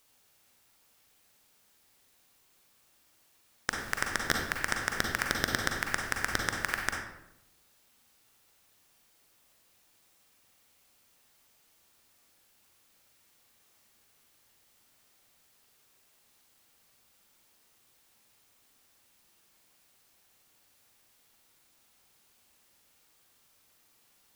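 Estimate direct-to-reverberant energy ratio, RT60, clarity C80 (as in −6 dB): 1.0 dB, 0.85 s, 6.0 dB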